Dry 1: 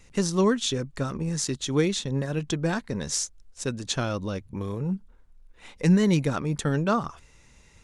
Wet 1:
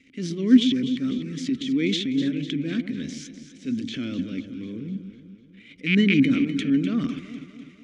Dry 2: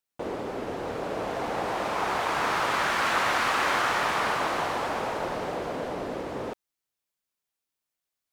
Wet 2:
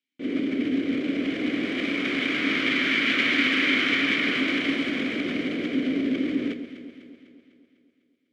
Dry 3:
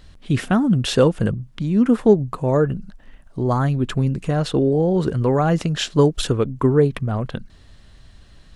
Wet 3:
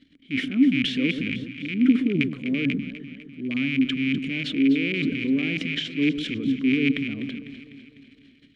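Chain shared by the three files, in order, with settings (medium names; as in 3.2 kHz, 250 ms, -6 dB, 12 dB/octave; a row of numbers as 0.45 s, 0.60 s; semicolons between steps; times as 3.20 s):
rattle on loud lows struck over -21 dBFS, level -9 dBFS; dynamic bell 8.6 kHz, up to -4 dB, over -45 dBFS, Q 1.6; transient shaper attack -7 dB, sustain +12 dB; vowel filter i; on a send: echo whose repeats swap between lows and highs 125 ms, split 1.1 kHz, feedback 73%, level -9 dB; on the sum: normalise loudness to -24 LUFS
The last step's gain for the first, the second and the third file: +11.5 dB, +18.0 dB, +3.0 dB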